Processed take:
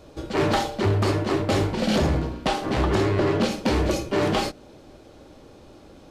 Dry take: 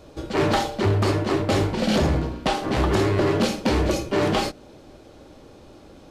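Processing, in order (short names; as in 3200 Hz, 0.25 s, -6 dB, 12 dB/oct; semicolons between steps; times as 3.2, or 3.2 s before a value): 2.73–3.5 high shelf 11000 Hz -> 7600 Hz -8.5 dB; gain -1 dB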